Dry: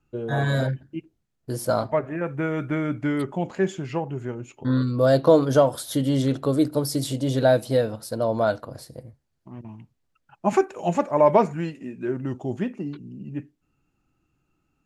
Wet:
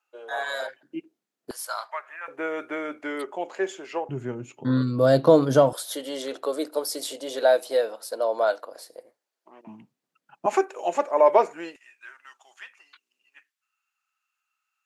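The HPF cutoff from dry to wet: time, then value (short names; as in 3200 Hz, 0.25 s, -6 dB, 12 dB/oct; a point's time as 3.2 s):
HPF 24 dB/oct
620 Hz
from 0.83 s 250 Hz
from 1.51 s 990 Hz
from 2.28 s 390 Hz
from 4.09 s 120 Hz
from 5.73 s 420 Hz
from 9.67 s 180 Hz
from 10.46 s 380 Hz
from 11.76 s 1200 Hz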